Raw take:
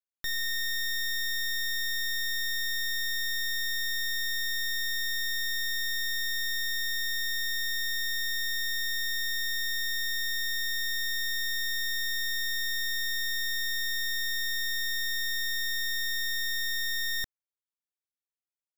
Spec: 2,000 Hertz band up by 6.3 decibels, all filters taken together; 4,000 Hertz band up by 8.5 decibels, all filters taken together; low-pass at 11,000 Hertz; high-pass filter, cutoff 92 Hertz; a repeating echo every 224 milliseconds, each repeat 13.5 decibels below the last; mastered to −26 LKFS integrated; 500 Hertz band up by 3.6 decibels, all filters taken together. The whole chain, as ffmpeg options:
ffmpeg -i in.wav -af "highpass=92,lowpass=11000,equalizer=frequency=500:width_type=o:gain=4,equalizer=frequency=2000:width_type=o:gain=5,equalizer=frequency=4000:width_type=o:gain=8.5,aecho=1:1:224|448:0.211|0.0444,volume=-3.5dB" out.wav

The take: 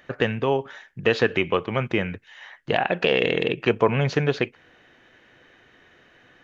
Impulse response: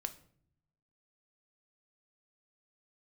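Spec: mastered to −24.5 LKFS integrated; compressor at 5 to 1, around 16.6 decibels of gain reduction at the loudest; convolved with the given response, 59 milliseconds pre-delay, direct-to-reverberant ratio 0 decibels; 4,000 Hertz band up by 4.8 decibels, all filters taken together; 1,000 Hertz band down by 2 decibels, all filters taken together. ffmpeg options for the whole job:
-filter_complex "[0:a]equalizer=frequency=1000:width_type=o:gain=-3,equalizer=frequency=4000:width_type=o:gain=7.5,acompressor=threshold=-34dB:ratio=5,asplit=2[link_01][link_02];[1:a]atrim=start_sample=2205,adelay=59[link_03];[link_02][link_03]afir=irnorm=-1:irlink=0,volume=1.5dB[link_04];[link_01][link_04]amix=inputs=2:normalize=0,volume=10dB"

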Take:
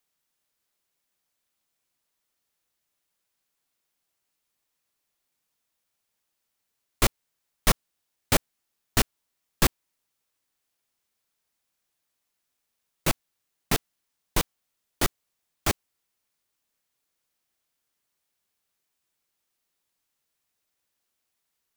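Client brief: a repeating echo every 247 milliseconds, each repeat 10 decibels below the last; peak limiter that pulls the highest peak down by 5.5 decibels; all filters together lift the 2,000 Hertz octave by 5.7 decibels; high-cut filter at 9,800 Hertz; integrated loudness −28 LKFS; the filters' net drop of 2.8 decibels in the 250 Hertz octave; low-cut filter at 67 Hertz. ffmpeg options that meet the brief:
ffmpeg -i in.wav -af "highpass=67,lowpass=9800,equalizer=frequency=250:width_type=o:gain=-4,equalizer=frequency=2000:width_type=o:gain=7,alimiter=limit=-12dB:level=0:latency=1,aecho=1:1:247|494|741|988:0.316|0.101|0.0324|0.0104,volume=3dB" out.wav

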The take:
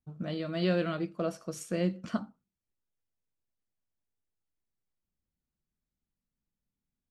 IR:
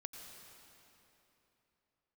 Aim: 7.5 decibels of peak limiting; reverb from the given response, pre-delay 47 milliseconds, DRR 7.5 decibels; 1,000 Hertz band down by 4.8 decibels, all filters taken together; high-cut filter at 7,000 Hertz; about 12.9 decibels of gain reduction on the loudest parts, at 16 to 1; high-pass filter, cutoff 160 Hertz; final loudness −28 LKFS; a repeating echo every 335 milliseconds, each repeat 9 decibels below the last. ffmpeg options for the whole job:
-filter_complex "[0:a]highpass=160,lowpass=7000,equalizer=frequency=1000:width_type=o:gain=-8,acompressor=threshold=-38dB:ratio=16,alimiter=level_in=11dB:limit=-24dB:level=0:latency=1,volume=-11dB,aecho=1:1:335|670|1005|1340:0.355|0.124|0.0435|0.0152,asplit=2[link_01][link_02];[1:a]atrim=start_sample=2205,adelay=47[link_03];[link_02][link_03]afir=irnorm=-1:irlink=0,volume=-4dB[link_04];[link_01][link_04]amix=inputs=2:normalize=0,volume=17dB"

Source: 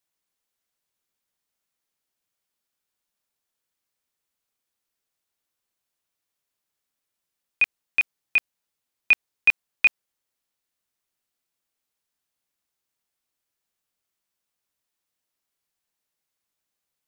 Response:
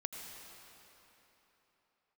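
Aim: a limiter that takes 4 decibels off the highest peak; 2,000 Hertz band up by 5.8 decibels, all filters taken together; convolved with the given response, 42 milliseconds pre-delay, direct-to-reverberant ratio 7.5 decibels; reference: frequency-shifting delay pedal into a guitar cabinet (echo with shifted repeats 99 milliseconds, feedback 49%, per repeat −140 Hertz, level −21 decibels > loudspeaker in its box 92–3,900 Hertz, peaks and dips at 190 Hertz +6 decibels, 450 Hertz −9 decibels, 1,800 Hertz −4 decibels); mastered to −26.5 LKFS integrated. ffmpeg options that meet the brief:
-filter_complex "[0:a]equalizer=frequency=2000:width_type=o:gain=9,alimiter=limit=-6.5dB:level=0:latency=1,asplit=2[link_01][link_02];[1:a]atrim=start_sample=2205,adelay=42[link_03];[link_02][link_03]afir=irnorm=-1:irlink=0,volume=-7dB[link_04];[link_01][link_04]amix=inputs=2:normalize=0,asplit=5[link_05][link_06][link_07][link_08][link_09];[link_06]adelay=99,afreqshift=-140,volume=-21dB[link_10];[link_07]adelay=198,afreqshift=-280,volume=-27.2dB[link_11];[link_08]adelay=297,afreqshift=-420,volume=-33.4dB[link_12];[link_09]adelay=396,afreqshift=-560,volume=-39.6dB[link_13];[link_05][link_10][link_11][link_12][link_13]amix=inputs=5:normalize=0,highpass=92,equalizer=frequency=190:width_type=q:width=4:gain=6,equalizer=frequency=450:width_type=q:width=4:gain=-9,equalizer=frequency=1800:width_type=q:width=4:gain=-4,lowpass=frequency=3900:width=0.5412,lowpass=frequency=3900:width=1.3066,volume=-7.5dB"

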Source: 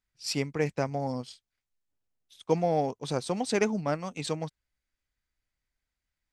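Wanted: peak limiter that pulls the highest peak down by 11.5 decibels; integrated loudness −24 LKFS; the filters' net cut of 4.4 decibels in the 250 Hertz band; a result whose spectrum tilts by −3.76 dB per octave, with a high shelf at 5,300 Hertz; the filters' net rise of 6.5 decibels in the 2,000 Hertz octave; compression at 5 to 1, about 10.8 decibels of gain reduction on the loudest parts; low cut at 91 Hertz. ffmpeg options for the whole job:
ffmpeg -i in.wav -af "highpass=91,equalizer=frequency=250:width_type=o:gain=-6,equalizer=frequency=2000:width_type=o:gain=7.5,highshelf=frequency=5300:gain=3,acompressor=threshold=-33dB:ratio=5,volume=19dB,alimiter=limit=-12.5dB:level=0:latency=1" out.wav

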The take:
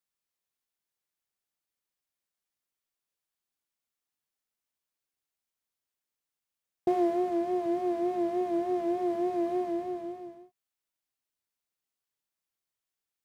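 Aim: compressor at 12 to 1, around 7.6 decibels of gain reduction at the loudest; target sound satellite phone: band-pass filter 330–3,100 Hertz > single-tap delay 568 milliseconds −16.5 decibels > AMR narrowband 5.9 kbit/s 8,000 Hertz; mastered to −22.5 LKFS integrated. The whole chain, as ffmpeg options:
ffmpeg -i in.wav -af "acompressor=threshold=-29dB:ratio=12,highpass=330,lowpass=3100,aecho=1:1:568:0.15,volume=14dB" -ar 8000 -c:a libopencore_amrnb -b:a 5900 out.amr

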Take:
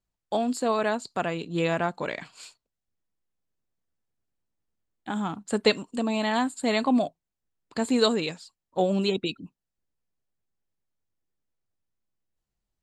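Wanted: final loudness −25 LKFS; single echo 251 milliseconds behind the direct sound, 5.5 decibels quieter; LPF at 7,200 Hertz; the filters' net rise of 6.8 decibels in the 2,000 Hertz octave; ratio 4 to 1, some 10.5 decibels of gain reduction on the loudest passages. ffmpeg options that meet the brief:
ffmpeg -i in.wav -af "lowpass=7200,equalizer=frequency=2000:width_type=o:gain=8.5,acompressor=threshold=-27dB:ratio=4,aecho=1:1:251:0.531,volume=6dB" out.wav

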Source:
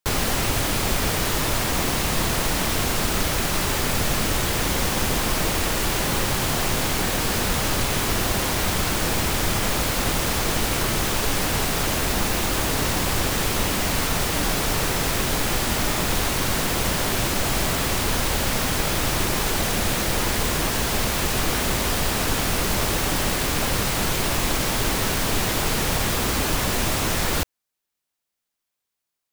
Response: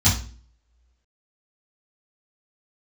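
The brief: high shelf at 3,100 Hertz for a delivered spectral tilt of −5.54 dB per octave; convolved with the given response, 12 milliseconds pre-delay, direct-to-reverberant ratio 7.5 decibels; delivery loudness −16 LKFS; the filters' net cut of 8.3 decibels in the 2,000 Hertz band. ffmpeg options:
-filter_complex "[0:a]equalizer=frequency=2000:width_type=o:gain=-8,highshelf=frequency=3100:gain=-8,asplit=2[link_01][link_02];[1:a]atrim=start_sample=2205,adelay=12[link_03];[link_02][link_03]afir=irnorm=-1:irlink=0,volume=-23dB[link_04];[link_01][link_04]amix=inputs=2:normalize=0,volume=3dB"

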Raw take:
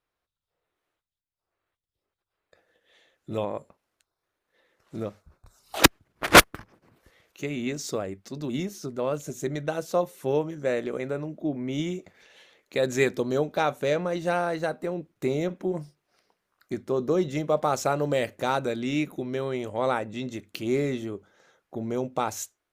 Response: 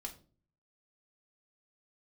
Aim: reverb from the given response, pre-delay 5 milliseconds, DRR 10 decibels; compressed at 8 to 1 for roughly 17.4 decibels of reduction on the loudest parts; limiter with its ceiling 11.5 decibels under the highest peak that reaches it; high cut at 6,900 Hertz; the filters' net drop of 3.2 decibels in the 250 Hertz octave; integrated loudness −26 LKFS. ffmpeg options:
-filter_complex "[0:a]lowpass=6900,equalizer=frequency=250:width_type=o:gain=-4.5,acompressor=threshold=-28dB:ratio=8,alimiter=level_in=1dB:limit=-24dB:level=0:latency=1,volume=-1dB,asplit=2[link_01][link_02];[1:a]atrim=start_sample=2205,adelay=5[link_03];[link_02][link_03]afir=irnorm=-1:irlink=0,volume=-7dB[link_04];[link_01][link_04]amix=inputs=2:normalize=0,volume=10dB"

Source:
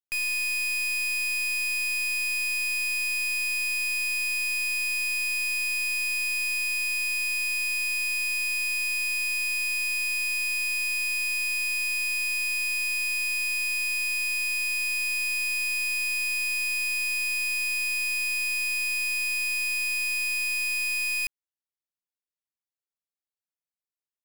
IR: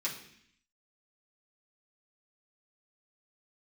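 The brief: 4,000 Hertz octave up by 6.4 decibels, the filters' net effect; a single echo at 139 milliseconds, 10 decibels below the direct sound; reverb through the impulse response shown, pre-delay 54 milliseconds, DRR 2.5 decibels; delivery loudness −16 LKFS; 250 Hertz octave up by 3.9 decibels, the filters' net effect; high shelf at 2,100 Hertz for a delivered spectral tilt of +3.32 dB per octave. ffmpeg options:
-filter_complex "[0:a]equalizer=frequency=250:width_type=o:gain=6,highshelf=frequency=2100:gain=4.5,equalizer=frequency=4000:width_type=o:gain=3.5,aecho=1:1:139:0.316,asplit=2[link_01][link_02];[1:a]atrim=start_sample=2205,adelay=54[link_03];[link_02][link_03]afir=irnorm=-1:irlink=0,volume=-6.5dB[link_04];[link_01][link_04]amix=inputs=2:normalize=0,volume=1.5dB"

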